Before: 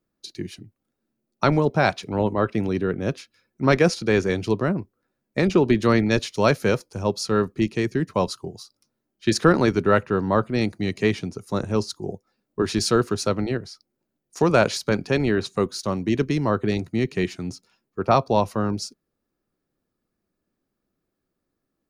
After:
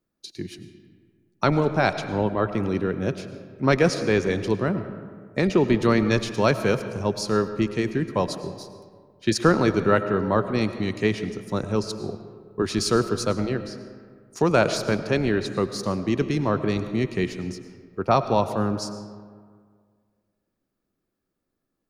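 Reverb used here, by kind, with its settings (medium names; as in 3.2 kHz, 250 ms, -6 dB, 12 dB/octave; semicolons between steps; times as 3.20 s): algorithmic reverb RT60 1.9 s, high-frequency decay 0.5×, pre-delay 65 ms, DRR 10.5 dB; trim -1.5 dB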